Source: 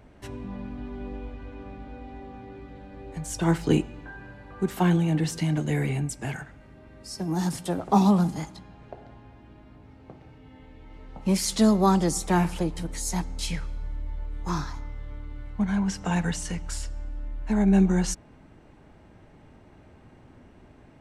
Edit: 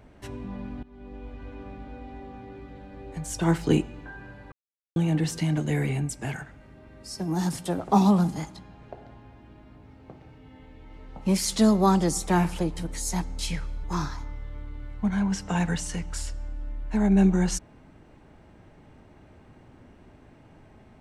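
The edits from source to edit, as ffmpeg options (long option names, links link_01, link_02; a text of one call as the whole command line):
ffmpeg -i in.wav -filter_complex "[0:a]asplit=5[link_01][link_02][link_03][link_04][link_05];[link_01]atrim=end=0.83,asetpts=PTS-STARTPTS,afade=type=out:start_time=0.826:duration=0.004:curve=hsin:silence=0.112202[link_06];[link_02]atrim=start=0.83:end=4.52,asetpts=PTS-STARTPTS,afade=type=in:duration=0.64:silence=0.112202,afade=type=out:start_time=3.686:duration=0.004:curve=hsin[link_07];[link_03]atrim=start=4.52:end=4.96,asetpts=PTS-STARTPTS,volume=0[link_08];[link_04]atrim=start=4.96:end=13.842,asetpts=PTS-STARTPTS,afade=type=in:duration=0.004:curve=hsin[link_09];[link_05]atrim=start=14.398[link_10];[link_06][link_07][link_08][link_09]concat=n=4:v=0:a=1[link_11];[link_11][link_10]acrossfade=duration=0.004:curve1=hsin:curve2=hsin" out.wav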